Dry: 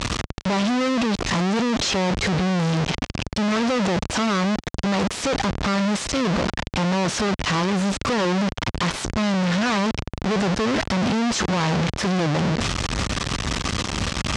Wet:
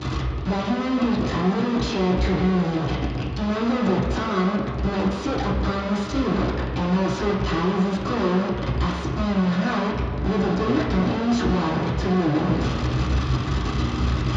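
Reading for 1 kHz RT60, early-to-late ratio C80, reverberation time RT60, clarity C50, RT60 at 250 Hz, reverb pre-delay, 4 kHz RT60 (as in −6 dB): 2.2 s, 4.0 dB, 2.2 s, 2.0 dB, 2.0 s, 3 ms, 1.7 s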